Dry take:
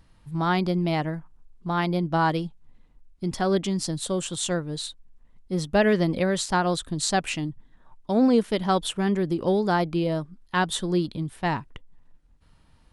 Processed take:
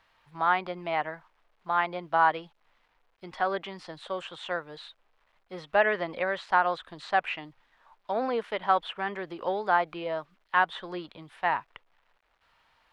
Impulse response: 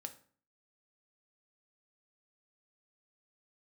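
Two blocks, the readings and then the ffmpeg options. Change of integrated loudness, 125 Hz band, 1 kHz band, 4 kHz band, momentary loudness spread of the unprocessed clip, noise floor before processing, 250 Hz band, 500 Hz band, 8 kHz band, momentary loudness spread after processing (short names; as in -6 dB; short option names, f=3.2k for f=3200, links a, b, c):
-3.5 dB, -20.0 dB, +1.0 dB, -8.5 dB, 11 LU, -58 dBFS, -16.5 dB, -5.0 dB, under -25 dB, 16 LU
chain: -filter_complex "[0:a]acrusher=bits=10:mix=0:aa=0.000001,acrossover=split=590 3800:gain=0.0631 1 0.0794[a][b][c];[a][b][c]amix=inputs=3:normalize=0,acrossover=split=2900[d][e];[e]acompressor=threshold=-56dB:ratio=4:attack=1:release=60[f];[d][f]amix=inputs=2:normalize=0,volume=3dB"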